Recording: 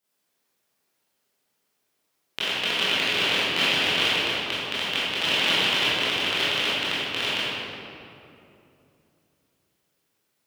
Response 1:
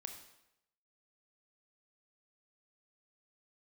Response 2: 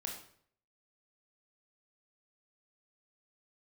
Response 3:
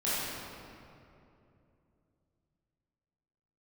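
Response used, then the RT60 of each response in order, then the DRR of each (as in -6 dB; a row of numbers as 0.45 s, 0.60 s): 3; 0.85 s, 0.60 s, 2.7 s; 5.0 dB, 0.0 dB, -11.5 dB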